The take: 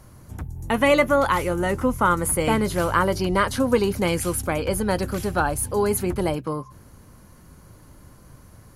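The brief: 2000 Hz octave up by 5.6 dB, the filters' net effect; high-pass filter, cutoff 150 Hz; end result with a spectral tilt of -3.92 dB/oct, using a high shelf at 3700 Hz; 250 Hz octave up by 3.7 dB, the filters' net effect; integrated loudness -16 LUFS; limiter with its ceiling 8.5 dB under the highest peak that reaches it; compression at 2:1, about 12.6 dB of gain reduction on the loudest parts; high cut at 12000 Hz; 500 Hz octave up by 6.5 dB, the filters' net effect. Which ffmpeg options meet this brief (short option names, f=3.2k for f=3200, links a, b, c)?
-af "highpass=150,lowpass=12k,equalizer=f=250:t=o:g=3.5,equalizer=f=500:t=o:g=6.5,equalizer=f=2k:t=o:g=4.5,highshelf=f=3.7k:g=8,acompressor=threshold=-31dB:ratio=2,volume=12.5dB,alimiter=limit=-5.5dB:level=0:latency=1"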